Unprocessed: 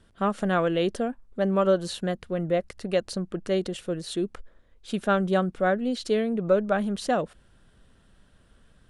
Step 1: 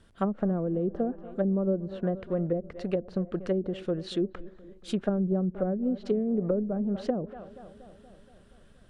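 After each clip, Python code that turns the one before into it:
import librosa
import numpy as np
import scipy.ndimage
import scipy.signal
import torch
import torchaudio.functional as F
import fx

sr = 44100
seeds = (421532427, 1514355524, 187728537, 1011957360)

y = fx.echo_filtered(x, sr, ms=237, feedback_pct=70, hz=1200.0, wet_db=-19.0)
y = fx.env_lowpass_down(y, sr, base_hz=340.0, full_db=-21.0)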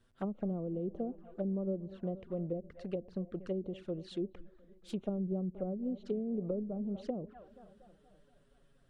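y = fx.env_flanger(x, sr, rest_ms=9.0, full_db=-27.5)
y = F.gain(torch.from_numpy(y), -8.0).numpy()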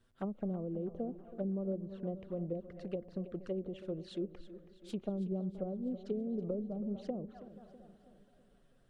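y = fx.echo_feedback(x, sr, ms=325, feedback_pct=51, wet_db=-14.5)
y = F.gain(torch.from_numpy(y), -1.5).numpy()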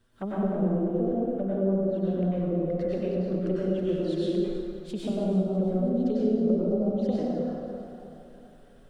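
y = fx.rev_plate(x, sr, seeds[0], rt60_s=1.9, hf_ratio=0.65, predelay_ms=85, drr_db=-7.5)
y = F.gain(torch.from_numpy(y), 4.5).numpy()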